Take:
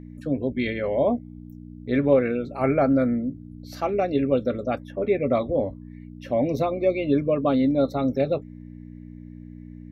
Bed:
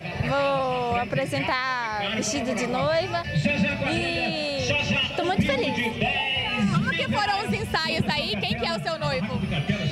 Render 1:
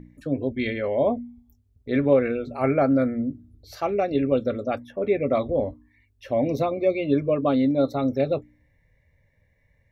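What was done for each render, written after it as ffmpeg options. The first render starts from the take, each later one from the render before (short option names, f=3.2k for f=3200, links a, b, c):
-af "bandreject=f=60:t=h:w=4,bandreject=f=120:t=h:w=4,bandreject=f=180:t=h:w=4,bandreject=f=240:t=h:w=4,bandreject=f=300:t=h:w=4"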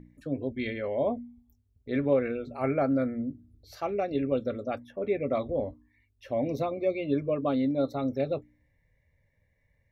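-af "volume=-6dB"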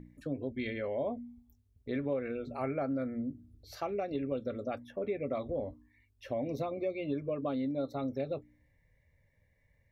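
-af "acompressor=threshold=-34dB:ratio=2.5"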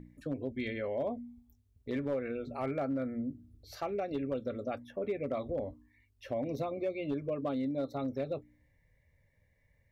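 -af "asoftclip=type=hard:threshold=-26.5dB"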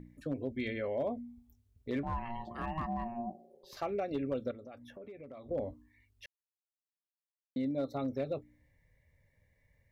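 -filter_complex "[0:a]asettb=1/sr,asplit=3[a][b][c];[a]atrim=end=2.034[d];[b]atrim=start=2.03:end=3.77,asetpts=PTS-STARTPTS,afade=t=in:d=0.004:c=qsin,afade=t=out:st=1.736:d=0.004:c=qsin,aeval=exprs='val(0)*sin(2*PI*470*n/s)':c=same[e];[c]atrim=start=3.766[f];[d][e]acrossfade=d=0.004:c1=hsin:c2=qsin[g];[g][f]acrossfade=d=0.004:c1=qsin:c2=hsin,asettb=1/sr,asplit=3[h][i][j];[h]atrim=end=4.514[k];[i]atrim=start=4.51:end=5.51,asetpts=PTS-STARTPTS,afade=t=in:d=0.004:c=qsin,afade=t=out:st=0.996:d=0.004:c=qsin,acompressor=threshold=-48dB:ratio=4:attack=3.2:release=140:knee=1:detection=peak[l];[j]atrim=start=5.506[m];[k][l]acrossfade=d=0.004:c1=hsin:c2=qsin[n];[n][m]acrossfade=d=0.004:c1=qsin:c2=hsin,asplit=3[o][p][q];[o]atrim=end=6.26,asetpts=PTS-STARTPTS,afade=t=out:st=6.256:d=0.004:c=hsin[r];[p]atrim=start=6.26:end=7.56,asetpts=PTS-STARTPTS,volume=0[s];[q]atrim=start=7.56,asetpts=PTS-STARTPTS,afade=t=in:d=0.004:c=hsin[t];[r][s][t]concat=n=3:v=0:a=1"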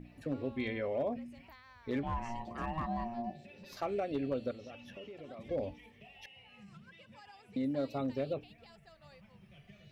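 -filter_complex "[1:a]volume=-32dB[a];[0:a][a]amix=inputs=2:normalize=0"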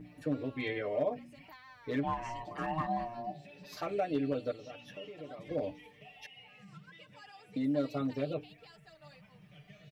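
-af "lowshelf=f=71:g=-12,aecho=1:1:6.6:0.94"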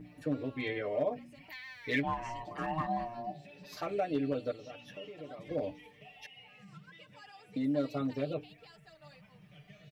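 -filter_complex "[0:a]asettb=1/sr,asplit=3[a][b][c];[a]atrim=end=1.504[d];[b]atrim=start=1.5:end=2.02,asetpts=PTS-STARTPTS,afade=t=in:d=0.004:c=qsin,afade=t=out:st=0.516:d=0.004:c=qsin,highshelf=f=1.6k:t=q:w=3:g=8[e];[c]atrim=start=2.016[f];[d][e]acrossfade=d=0.004:c1=hsin:c2=qsin[g];[g][f]acrossfade=d=0.004:c1=qsin:c2=hsin"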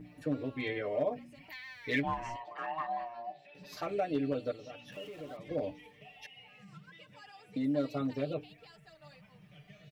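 -filter_complex "[0:a]asettb=1/sr,asplit=3[a][b][c];[a]atrim=end=2.364[d];[b]atrim=start=2.36:end=3.55,asetpts=PTS-STARTPTS,afade=t=in:d=0.004:c=qsin,afade=t=out:st=1.186:d=0.004:c=qsin,acrossover=split=490 4100:gain=0.1 1 0.224[e][f][g];[e][f][g]amix=inputs=3:normalize=0[h];[c]atrim=start=3.546[i];[d][h]acrossfade=d=0.004:c1=hsin:c2=qsin[j];[j][i]acrossfade=d=0.004:c1=qsin:c2=hsin,asettb=1/sr,asplit=3[k][l][m];[k]atrim=end=4.924[n];[l]atrim=start=4.92:end=5.37,asetpts=PTS-STARTPTS,afade=t=in:d=0.004:c=qsin,afade=t=out:st=0.446:d=0.004:c=qsin,aeval=exprs='val(0)+0.5*0.002*sgn(val(0))':c=same[o];[m]atrim=start=5.366[p];[n][o]acrossfade=d=0.004:c1=hsin:c2=qsin[q];[q][p]acrossfade=d=0.004:c1=qsin:c2=hsin"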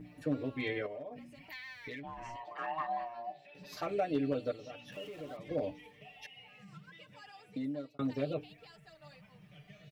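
-filter_complex "[0:a]asettb=1/sr,asplit=3[a][b][c];[a]atrim=end=0.864[d];[b]atrim=start=0.86:end=2.59,asetpts=PTS-STARTPTS,afade=t=in:d=0.004:c=qsin,afade=t=out:st=1.726:d=0.004:c=qsin,acompressor=threshold=-40dB:ratio=12:attack=3.2:release=140:knee=1:detection=peak[e];[c]atrim=start=2.586[f];[d][e]acrossfade=d=0.004:c1=hsin:c2=qsin[g];[g][f]acrossfade=d=0.004:c1=qsin:c2=hsin,asplit=2[h][i];[h]atrim=end=7.99,asetpts=PTS-STARTPTS,afade=t=out:st=7.38:d=0.61[j];[i]atrim=start=7.99,asetpts=PTS-STARTPTS,afade=t=in:d=0.004:c=hsin[k];[j][k]concat=n=2:v=0:a=1"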